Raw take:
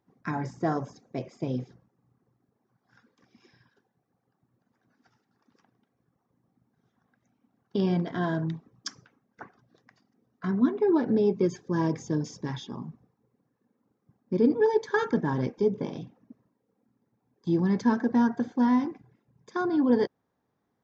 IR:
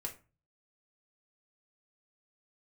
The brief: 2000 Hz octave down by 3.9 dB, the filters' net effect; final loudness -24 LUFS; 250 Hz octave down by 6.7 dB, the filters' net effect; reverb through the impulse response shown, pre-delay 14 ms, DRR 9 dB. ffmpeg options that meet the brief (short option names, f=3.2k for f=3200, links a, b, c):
-filter_complex "[0:a]equalizer=f=250:t=o:g=-8.5,equalizer=f=2k:t=o:g=-5,asplit=2[a][b];[1:a]atrim=start_sample=2205,adelay=14[c];[b][c]afir=irnorm=-1:irlink=0,volume=-7.5dB[d];[a][d]amix=inputs=2:normalize=0,volume=7dB"